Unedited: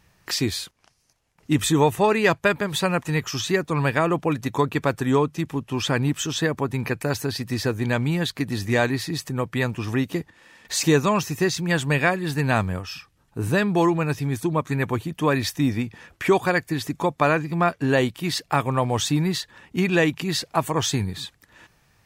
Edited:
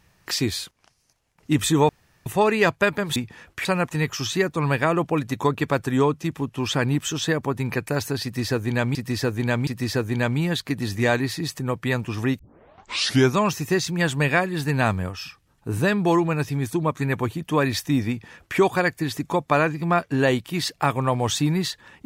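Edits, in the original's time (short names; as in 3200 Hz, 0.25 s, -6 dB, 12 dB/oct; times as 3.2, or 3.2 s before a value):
1.89 insert room tone 0.37 s
7.37–8.09 loop, 3 plays
10.09 tape start 0.96 s
15.79–16.28 copy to 2.79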